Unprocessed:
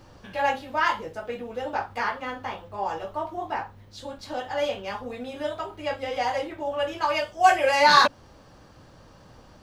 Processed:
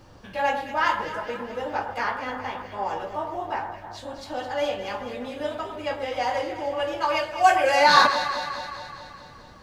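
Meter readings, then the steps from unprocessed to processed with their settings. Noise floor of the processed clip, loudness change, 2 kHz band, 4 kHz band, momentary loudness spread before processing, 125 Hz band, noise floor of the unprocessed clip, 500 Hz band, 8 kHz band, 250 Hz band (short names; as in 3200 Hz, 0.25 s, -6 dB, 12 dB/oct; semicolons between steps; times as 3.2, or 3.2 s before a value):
-46 dBFS, +0.5 dB, +1.0 dB, +0.5 dB, 16 LU, +0.5 dB, -52 dBFS, +1.0 dB, +0.5 dB, +1.0 dB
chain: echo with dull and thin repeats by turns 0.106 s, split 1800 Hz, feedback 78%, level -7.5 dB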